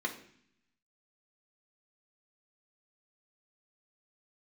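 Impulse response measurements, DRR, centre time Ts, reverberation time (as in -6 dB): 0.0 dB, 12 ms, 0.60 s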